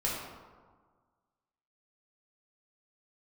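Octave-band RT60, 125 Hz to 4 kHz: 1.7, 1.6, 1.5, 1.6, 1.1, 0.75 seconds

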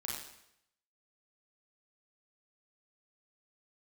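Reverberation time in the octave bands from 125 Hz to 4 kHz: 0.80, 0.75, 0.80, 0.75, 0.75, 0.75 seconds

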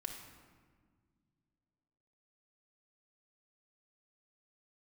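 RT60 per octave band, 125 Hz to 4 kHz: 2.9, 2.8, 1.9, 1.6, 1.3, 1.0 seconds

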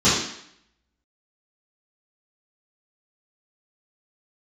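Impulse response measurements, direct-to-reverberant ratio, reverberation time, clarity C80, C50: −14.0 dB, 0.70 s, 5.5 dB, 1.0 dB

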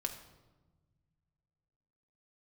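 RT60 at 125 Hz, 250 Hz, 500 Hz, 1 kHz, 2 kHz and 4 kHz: 2.9, 2.3, 1.4, 1.1, 0.85, 0.80 seconds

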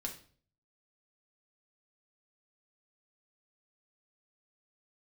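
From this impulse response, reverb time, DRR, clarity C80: 0.45 s, 0.5 dB, 15.0 dB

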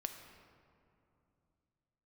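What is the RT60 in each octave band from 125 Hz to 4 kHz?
4.0, 3.7, 2.8, 2.6, 2.0, 1.2 seconds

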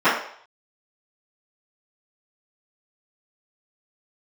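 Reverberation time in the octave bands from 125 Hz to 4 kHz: 0.35, 0.40, 0.55, 0.60, 0.55, 0.60 seconds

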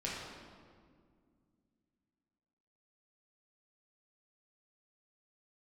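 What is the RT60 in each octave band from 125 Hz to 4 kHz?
3.0, 3.3, 2.3, 1.8, 1.5, 1.2 seconds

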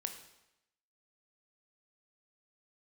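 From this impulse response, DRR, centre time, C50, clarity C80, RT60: 5.5 dB, 17 ms, 8.5 dB, 11.0 dB, 0.90 s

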